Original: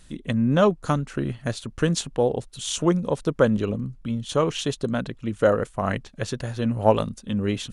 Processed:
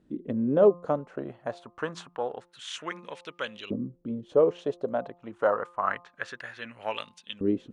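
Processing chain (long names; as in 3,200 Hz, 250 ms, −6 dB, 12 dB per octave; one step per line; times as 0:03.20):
auto-filter band-pass saw up 0.27 Hz 300–3,300 Hz
hum removal 174.7 Hz, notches 7
level +4 dB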